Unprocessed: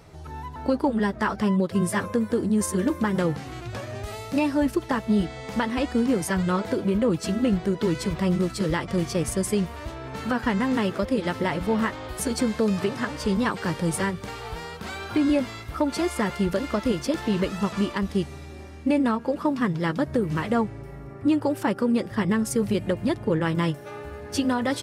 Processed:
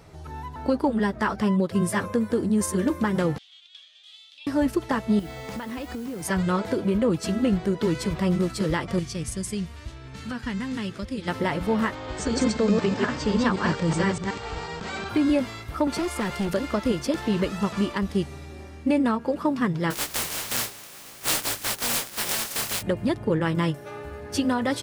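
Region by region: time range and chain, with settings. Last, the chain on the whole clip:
3.38–4.47 s: compression 2:1, threshold -26 dBFS + ladder band-pass 3.5 kHz, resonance 85%
5.19–6.25 s: modulation noise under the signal 21 dB + compression 12:1, threshold -29 dBFS
8.99–11.28 s: low-pass 9.3 kHz + peaking EQ 680 Hz -13.5 dB 2.7 oct
11.95–15.09 s: chunks repeated in reverse 124 ms, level -2 dB + steep low-pass 8.2 kHz 96 dB/octave
15.87–16.54 s: hard clipper -23 dBFS + three bands compressed up and down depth 70%
19.90–22.81 s: spectral contrast reduction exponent 0.11 + hum notches 50/100/150/200/250/300/350/400 Hz + detune thickener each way 16 cents
whole clip: none

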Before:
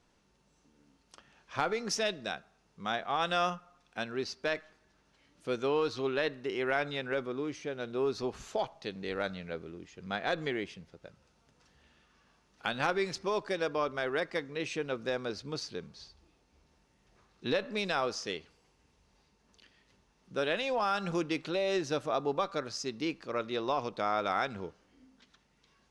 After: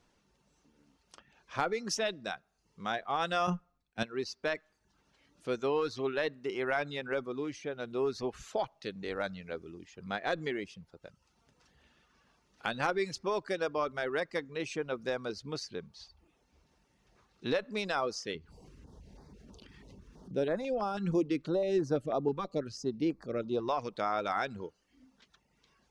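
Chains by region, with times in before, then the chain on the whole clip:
3.47–4.03 s: bass shelf 290 Hz +12 dB + three bands expanded up and down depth 100%
18.35–23.69 s: tilt shelf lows +6.5 dB, about 790 Hz + upward compressor, threshold -39 dBFS + step-sequenced notch 6.1 Hz 620–2900 Hz
whole clip: dynamic bell 3.2 kHz, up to -3 dB, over -48 dBFS, Q 1.4; reverb removal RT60 0.57 s

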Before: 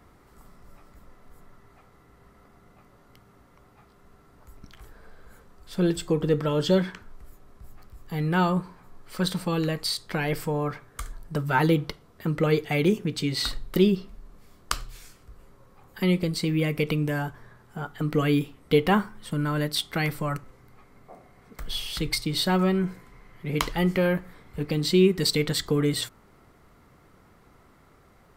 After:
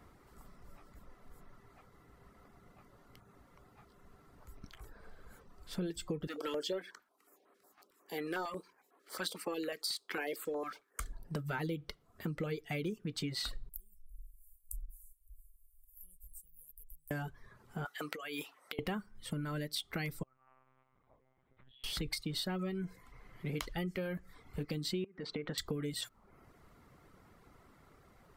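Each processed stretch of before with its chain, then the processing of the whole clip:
6.27–11.00 s: high-pass 320 Hz 24 dB/octave + waveshaping leveller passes 1 + step-sequenced notch 11 Hz 440–5400 Hz
13.69–17.11 s: short-mantissa float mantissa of 8-bit + inverse Chebyshev band-stop 120–4700 Hz, stop band 50 dB + tape noise reduction on one side only encoder only
17.85–18.79 s: high-pass 670 Hz + compressor with a negative ratio -37 dBFS
20.23–21.84 s: feedback comb 91 Hz, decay 1.8 s, mix 90% + compression 16:1, threshold -53 dBFS + monotone LPC vocoder at 8 kHz 130 Hz
25.04–25.58 s: low-pass 6.4 kHz 24 dB/octave + three-band isolator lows -14 dB, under 170 Hz, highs -20 dB, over 2.4 kHz + compression 16:1, threshold -26 dBFS
whole clip: reverb removal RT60 0.53 s; dynamic bell 970 Hz, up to -6 dB, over -47 dBFS, Q 2.2; compression 6:1, threshold -31 dBFS; trim -4 dB

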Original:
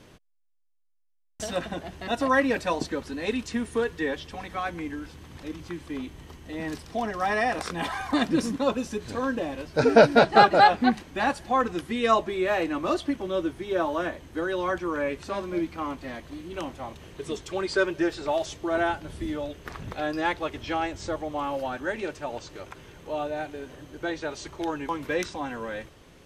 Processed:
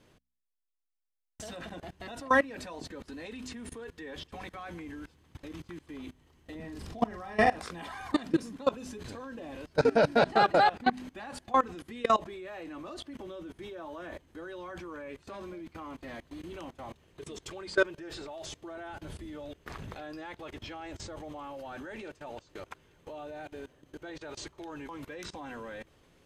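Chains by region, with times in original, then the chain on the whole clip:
6.55–7.59 s: bass shelf 310 Hz +9.5 dB + doubling 42 ms -4.5 dB
whole clip: band-stop 5.7 kHz, Q 21; de-hum 62.97 Hz, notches 4; level held to a coarse grid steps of 21 dB

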